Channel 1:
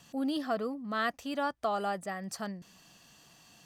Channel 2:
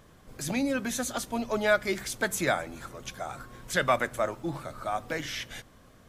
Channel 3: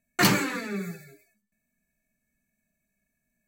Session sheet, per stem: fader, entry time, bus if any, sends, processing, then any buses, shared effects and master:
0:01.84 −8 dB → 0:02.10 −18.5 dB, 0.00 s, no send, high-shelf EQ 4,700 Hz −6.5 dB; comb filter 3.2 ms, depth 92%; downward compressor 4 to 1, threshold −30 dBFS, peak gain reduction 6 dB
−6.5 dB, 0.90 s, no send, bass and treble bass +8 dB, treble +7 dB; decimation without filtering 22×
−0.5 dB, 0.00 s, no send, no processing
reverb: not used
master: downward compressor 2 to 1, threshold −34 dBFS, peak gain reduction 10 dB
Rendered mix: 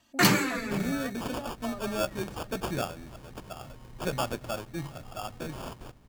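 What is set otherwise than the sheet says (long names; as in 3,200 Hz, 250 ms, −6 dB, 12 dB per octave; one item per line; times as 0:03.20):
stem 2: entry 0.90 s → 0.30 s
master: missing downward compressor 2 to 1, threshold −34 dBFS, peak gain reduction 10 dB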